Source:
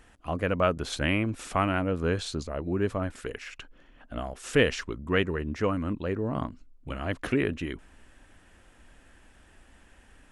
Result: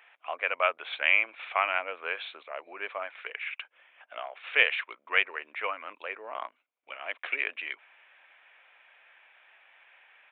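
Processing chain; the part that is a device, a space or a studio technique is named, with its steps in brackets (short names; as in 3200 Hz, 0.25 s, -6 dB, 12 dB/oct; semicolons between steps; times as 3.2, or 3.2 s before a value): musical greeting card (downsampling 8000 Hz; HPF 650 Hz 24 dB/oct; bell 2300 Hz +12 dB 0.34 oct); 6.47–7.44 bell 2600 Hz -> 860 Hz -4.5 dB 2.7 oct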